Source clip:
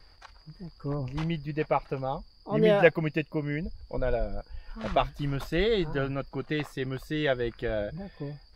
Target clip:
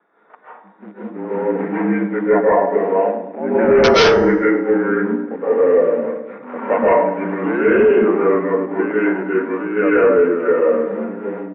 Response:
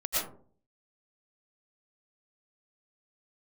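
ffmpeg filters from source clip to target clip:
-filter_complex "[0:a]asplit=2[link_01][link_02];[link_02]acrusher=bits=5:mix=0:aa=0.000001,volume=-3dB[link_03];[link_01][link_03]amix=inputs=2:normalize=0,highpass=frequency=180:width_type=q:width=0.5412,highpass=frequency=180:width_type=q:width=1.307,lowpass=frequency=2700:width_type=q:width=0.5176,lowpass=frequency=2700:width_type=q:width=0.7071,lowpass=frequency=2700:width_type=q:width=1.932,afreqshift=110,aecho=1:1:77|154|231|308|385|462:0.2|0.116|0.0671|0.0389|0.0226|0.0131,aresample=16000,aeval=exprs='(mod(1.88*val(0)+1,2)-1)/1.88':channel_layout=same,aresample=44100[link_04];[1:a]atrim=start_sample=2205,asetrate=43659,aresample=44100[link_05];[link_04][link_05]afir=irnorm=-1:irlink=0,apsyclip=9.5dB,bandreject=frequency=374:width_type=h:width=4,bandreject=frequency=748:width_type=h:width=4,bandreject=frequency=1122:width_type=h:width=4,bandreject=frequency=1496:width_type=h:width=4,bandreject=frequency=1870:width_type=h:width=4,bandreject=frequency=2244:width_type=h:width=4,bandreject=frequency=2618:width_type=h:width=4,bandreject=frequency=2992:width_type=h:width=4,bandreject=frequency=3366:width_type=h:width=4,bandreject=frequency=3740:width_type=h:width=4,bandreject=frequency=4114:width_type=h:width=4,bandreject=frequency=4488:width_type=h:width=4,bandreject=frequency=4862:width_type=h:width=4,bandreject=frequency=5236:width_type=h:width=4,bandreject=frequency=5610:width_type=h:width=4,bandreject=frequency=5984:width_type=h:width=4,bandreject=frequency=6358:width_type=h:width=4,bandreject=frequency=6732:width_type=h:width=4,bandreject=frequency=7106:width_type=h:width=4,bandreject=frequency=7480:width_type=h:width=4,bandreject=frequency=7854:width_type=h:width=4,bandreject=frequency=8228:width_type=h:width=4,bandreject=frequency=8602:width_type=h:width=4,bandreject=frequency=8976:width_type=h:width=4,bandreject=frequency=9350:width_type=h:width=4,bandreject=frequency=9724:width_type=h:width=4,bandreject=frequency=10098:width_type=h:width=4,bandreject=frequency=10472:width_type=h:width=4,bandreject=frequency=10846:width_type=h:width=4,bandreject=frequency=11220:width_type=h:width=4,bandreject=frequency=11594:width_type=h:width=4,bandreject=frequency=11968:width_type=h:width=4,bandreject=frequency=12342:width_type=h:width=4,bandreject=frequency=12716:width_type=h:width=4,bandreject=frequency=13090:width_type=h:width=4,bandreject=frequency=13464:width_type=h:width=4,bandreject=frequency=13838:width_type=h:width=4,asetrate=32667,aresample=44100,volume=-7dB"

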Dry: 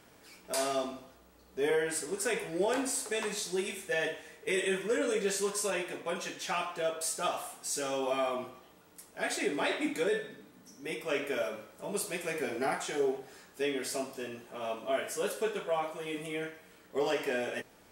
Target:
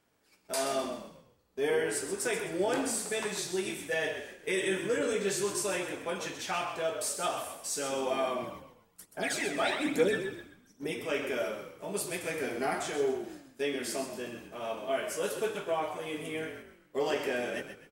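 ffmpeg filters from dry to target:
ffmpeg -i in.wav -filter_complex "[0:a]agate=range=-14dB:threshold=-51dB:ratio=16:detection=peak,asplit=3[link_01][link_02][link_03];[link_01]afade=type=out:start_time=8.42:duration=0.02[link_04];[link_02]aphaser=in_gain=1:out_gain=1:delay=1.7:decay=0.6:speed=1.2:type=triangular,afade=type=in:start_time=8.42:duration=0.02,afade=type=out:start_time=10.91:duration=0.02[link_05];[link_03]afade=type=in:start_time=10.91:duration=0.02[link_06];[link_04][link_05][link_06]amix=inputs=3:normalize=0,asplit=5[link_07][link_08][link_09][link_10][link_11];[link_08]adelay=129,afreqshift=-44,volume=-9dB[link_12];[link_09]adelay=258,afreqshift=-88,volume=-18.4dB[link_13];[link_10]adelay=387,afreqshift=-132,volume=-27.7dB[link_14];[link_11]adelay=516,afreqshift=-176,volume=-37.1dB[link_15];[link_07][link_12][link_13][link_14][link_15]amix=inputs=5:normalize=0" out.wav

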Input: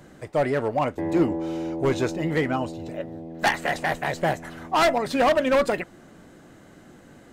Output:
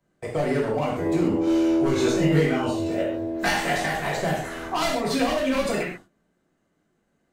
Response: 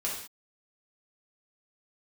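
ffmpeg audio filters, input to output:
-filter_complex "[0:a]alimiter=limit=-19dB:level=0:latency=1:release=111,agate=range=-28dB:threshold=-41dB:ratio=16:detection=peak[link_01];[1:a]atrim=start_sample=2205,atrim=end_sample=6615[link_02];[link_01][link_02]afir=irnorm=-1:irlink=0,acrossover=split=310|3000[link_03][link_04][link_05];[link_04]acompressor=threshold=-27dB:ratio=6[link_06];[link_03][link_06][link_05]amix=inputs=3:normalize=0,asettb=1/sr,asplit=3[link_07][link_08][link_09];[link_07]atrim=end=1.454[link_10];[link_08]atrim=start=1.45:end=3.86,asetpts=PTS-STARTPTS,afade=type=in:duration=0.004:curve=qsin,afade=type=out:start_time=2.406:duration=0.004:curve=qsin,asplit=2[link_11][link_12];[link_12]adelay=21,volume=-2.5dB[link_13];[link_11][link_13]amix=inputs=2:normalize=0,atrim=end_sample=106281[link_14];[link_09]atrim=start=3.856[link_15];[link_10][link_14]acrossfade=duration=0.004:curve1=hsin:curve2=qsin[link_16];[link_16][link_15]acrossfade=duration=0.004:curve1=qsin:curve2=hsin,volume=2.5dB"

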